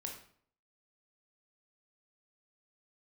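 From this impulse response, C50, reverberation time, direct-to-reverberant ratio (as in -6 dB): 5.5 dB, 0.55 s, 0.5 dB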